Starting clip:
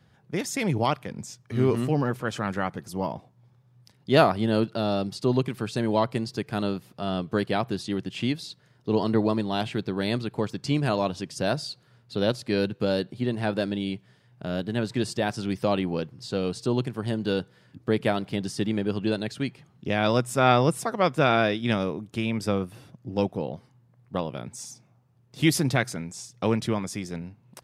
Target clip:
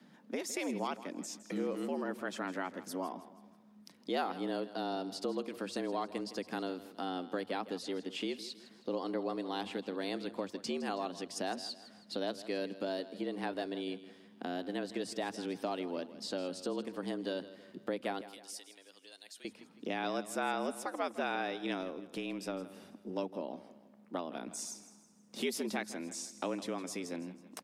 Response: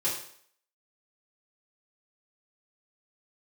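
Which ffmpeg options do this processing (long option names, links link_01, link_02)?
-filter_complex "[0:a]asubboost=boost=4:cutoff=51,afreqshift=87,acompressor=threshold=-39dB:ratio=2.5,asettb=1/sr,asplit=3[link_01][link_02][link_03];[link_01]atrim=end=18.214[link_04];[link_02]atrim=start=18.21:end=19.45,asetpts=PTS-STARTPTS,afade=type=in:duration=0.004:curve=qsin,afade=type=out:start_time=1.236:duration=0.004:curve=qsin,aderivative[link_05];[link_03]atrim=start=19.446[link_06];[link_04][link_05]acrossfade=duration=0.004:curve1=hsin:curve2=qsin[link_07];[link_07][link_06]acrossfade=duration=0.004:curve1=qsin:curve2=hsin,aecho=1:1:161|322|483|644:0.178|0.0782|0.0344|0.0151,asettb=1/sr,asplit=3[link_08][link_09][link_10];[link_08]atrim=end=21.814[link_11];[link_09]atrim=start=21.81:end=23.1,asetpts=PTS-STARTPTS,afade=type=in:duration=0.004:curve=qsin,afade=type=out:start_time=1.286:duration=0.004:curve=qsin,aeval=exprs='0.119*(cos(1*acos(clip(val(0)/0.119,-1,1)))-cos(1*PI/2))+0.00944*(cos(2*acos(clip(val(0)/0.119,-1,1)))-cos(2*PI/2))+0.00944*(cos(3*acos(clip(val(0)/0.119,-1,1)))-cos(3*PI/2))':channel_layout=same[link_12];[link_10]atrim=start=23.096[link_13];[link_11][link_12]acrossfade=duration=0.004:curve1=hsin:curve2=qsin[link_14];[link_14][link_13]acrossfade=duration=0.004:curve1=qsin:curve2=hsin"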